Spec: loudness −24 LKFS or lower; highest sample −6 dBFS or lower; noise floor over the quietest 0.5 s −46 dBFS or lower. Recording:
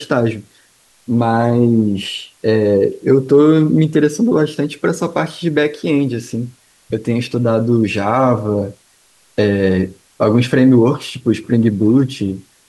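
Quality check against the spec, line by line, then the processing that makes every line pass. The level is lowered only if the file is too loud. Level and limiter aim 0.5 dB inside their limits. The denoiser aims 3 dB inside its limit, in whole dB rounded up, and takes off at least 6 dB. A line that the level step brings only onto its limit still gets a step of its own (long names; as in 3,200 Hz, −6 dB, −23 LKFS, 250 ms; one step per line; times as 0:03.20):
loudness −15.5 LKFS: out of spec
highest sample −2.0 dBFS: out of spec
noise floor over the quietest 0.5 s −53 dBFS: in spec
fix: level −9 dB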